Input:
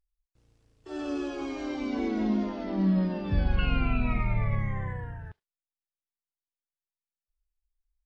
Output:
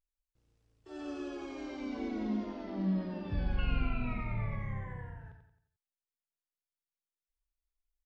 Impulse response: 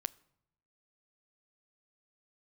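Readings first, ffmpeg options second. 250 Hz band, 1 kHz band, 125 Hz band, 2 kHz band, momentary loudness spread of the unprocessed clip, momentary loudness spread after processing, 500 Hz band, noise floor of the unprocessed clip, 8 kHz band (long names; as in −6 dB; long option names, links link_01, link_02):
−7.5 dB, −7.5 dB, −7.5 dB, −7.5 dB, 11 LU, 12 LU, −7.5 dB, below −85 dBFS, can't be measured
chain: -af "aecho=1:1:89|178|267|356|445:0.447|0.192|0.0826|0.0355|0.0153,volume=-8.5dB"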